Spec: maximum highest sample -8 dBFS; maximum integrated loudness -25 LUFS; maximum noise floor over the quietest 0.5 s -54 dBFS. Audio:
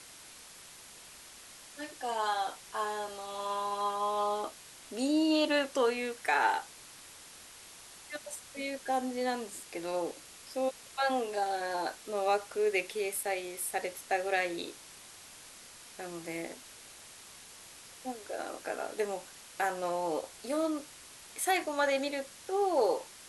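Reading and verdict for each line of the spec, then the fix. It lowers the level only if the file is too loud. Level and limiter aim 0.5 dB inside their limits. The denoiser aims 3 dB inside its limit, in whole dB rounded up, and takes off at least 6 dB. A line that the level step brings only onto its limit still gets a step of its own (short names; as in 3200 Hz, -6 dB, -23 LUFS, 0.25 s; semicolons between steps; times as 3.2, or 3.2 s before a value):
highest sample -16.0 dBFS: OK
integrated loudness -33.5 LUFS: OK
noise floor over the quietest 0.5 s -52 dBFS: fail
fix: denoiser 6 dB, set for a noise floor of -52 dBFS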